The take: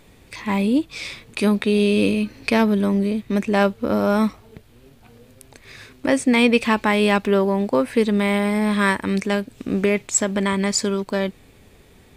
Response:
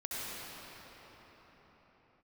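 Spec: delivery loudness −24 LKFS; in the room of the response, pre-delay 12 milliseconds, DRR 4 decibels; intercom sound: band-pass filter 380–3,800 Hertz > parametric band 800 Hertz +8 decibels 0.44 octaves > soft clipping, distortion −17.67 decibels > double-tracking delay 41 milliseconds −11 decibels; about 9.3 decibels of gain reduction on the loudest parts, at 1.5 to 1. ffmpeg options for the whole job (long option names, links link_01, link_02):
-filter_complex "[0:a]acompressor=threshold=-39dB:ratio=1.5,asplit=2[link_01][link_02];[1:a]atrim=start_sample=2205,adelay=12[link_03];[link_02][link_03]afir=irnorm=-1:irlink=0,volume=-8.5dB[link_04];[link_01][link_04]amix=inputs=2:normalize=0,highpass=380,lowpass=3800,equalizer=frequency=800:width_type=o:width=0.44:gain=8,asoftclip=threshold=-18dB,asplit=2[link_05][link_06];[link_06]adelay=41,volume=-11dB[link_07];[link_05][link_07]amix=inputs=2:normalize=0,volume=6.5dB"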